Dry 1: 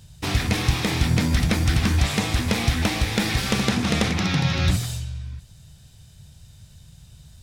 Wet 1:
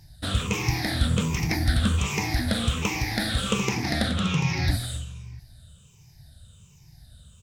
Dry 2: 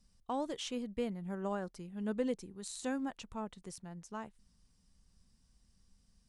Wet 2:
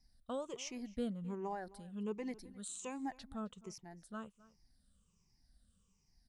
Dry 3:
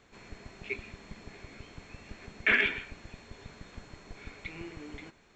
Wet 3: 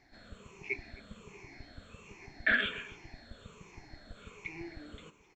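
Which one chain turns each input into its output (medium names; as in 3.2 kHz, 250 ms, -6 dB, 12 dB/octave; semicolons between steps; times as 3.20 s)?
drifting ripple filter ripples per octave 0.75, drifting -1.3 Hz, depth 16 dB; echo from a far wall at 45 m, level -20 dB; trim -6 dB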